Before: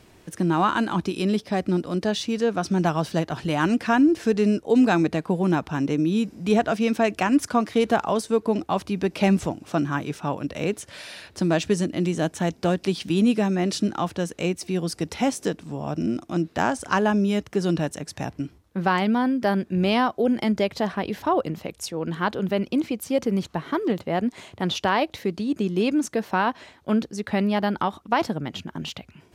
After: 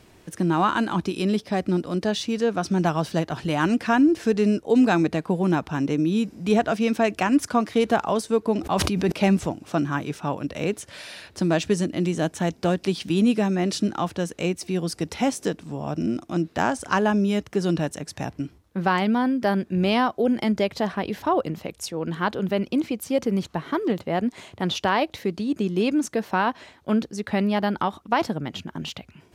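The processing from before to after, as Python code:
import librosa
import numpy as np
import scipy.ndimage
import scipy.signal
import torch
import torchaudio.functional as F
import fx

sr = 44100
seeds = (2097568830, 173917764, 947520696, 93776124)

y = fx.sustainer(x, sr, db_per_s=22.0, at=(8.6, 9.12))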